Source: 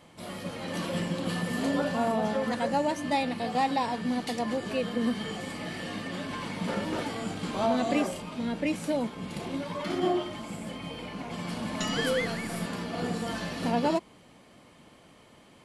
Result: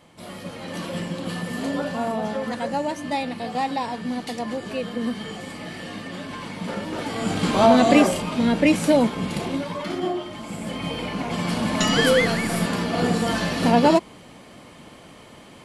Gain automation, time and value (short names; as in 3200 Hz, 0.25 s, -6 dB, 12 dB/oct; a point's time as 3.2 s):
6.95 s +1.5 dB
7.37 s +11.5 dB
9.17 s +11.5 dB
10.16 s 0 dB
10.86 s +10 dB